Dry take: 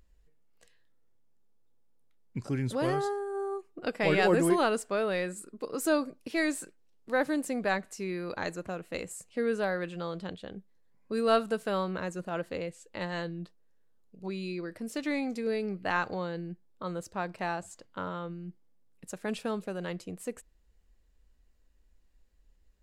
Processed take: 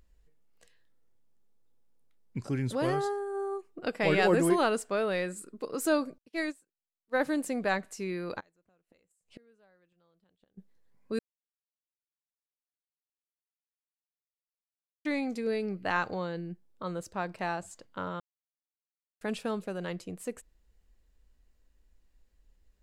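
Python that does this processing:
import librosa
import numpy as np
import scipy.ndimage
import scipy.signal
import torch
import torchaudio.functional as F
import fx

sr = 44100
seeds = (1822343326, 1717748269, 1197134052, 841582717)

y = fx.upward_expand(x, sr, threshold_db=-48.0, expansion=2.5, at=(6.18, 7.2))
y = fx.gate_flip(y, sr, shuts_db=-33.0, range_db=-34, at=(8.39, 10.57), fade=0.02)
y = fx.edit(y, sr, fx.silence(start_s=11.19, length_s=3.86),
    fx.silence(start_s=18.2, length_s=1.01), tone=tone)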